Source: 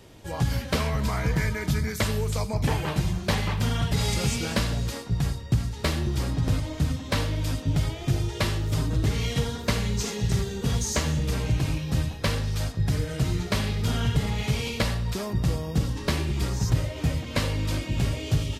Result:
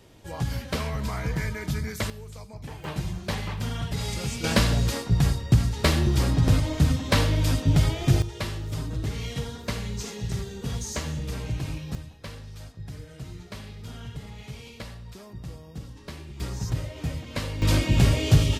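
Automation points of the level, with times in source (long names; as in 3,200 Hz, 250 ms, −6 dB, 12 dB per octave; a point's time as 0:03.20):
−3.5 dB
from 0:02.10 −14.5 dB
from 0:02.84 −5 dB
from 0:04.44 +4.5 dB
from 0:08.22 −5.5 dB
from 0:11.95 −14 dB
from 0:16.40 −5 dB
from 0:17.62 +6.5 dB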